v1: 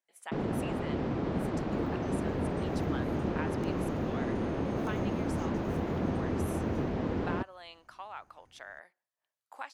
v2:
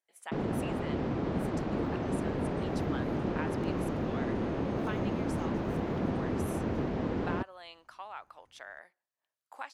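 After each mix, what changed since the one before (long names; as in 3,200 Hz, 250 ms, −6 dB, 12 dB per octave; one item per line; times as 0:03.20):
second sound −6.0 dB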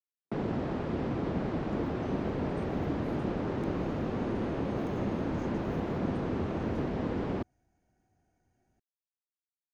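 speech: muted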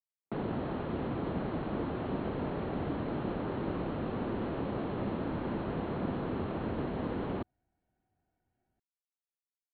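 second sound −5.0 dB
master: add Chebyshev low-pass with heavy ripple 4,300 Hz, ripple 3 dB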